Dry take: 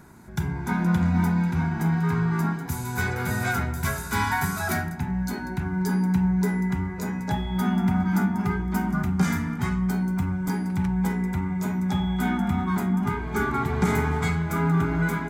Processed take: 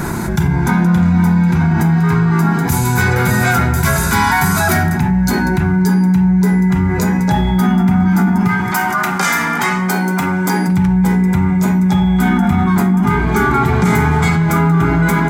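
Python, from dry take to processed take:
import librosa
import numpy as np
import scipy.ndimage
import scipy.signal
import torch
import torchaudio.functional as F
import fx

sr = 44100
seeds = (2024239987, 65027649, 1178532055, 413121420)

y = fx.highpass(x, sr, hz=fx.line((8.47, 910.0), (10.67, 290.0)), slope=12, at=(8.47, 10.67), fade=0.02)
y = fx.room_shoebox(y, sr, seeds[0], volume_m3=2800.0, walls='furnished', distance_m=0.8)
y = fx.env_flatten(y, sr, amount_pct=70)
y = y * librosa.db_to_amplitude(6.0)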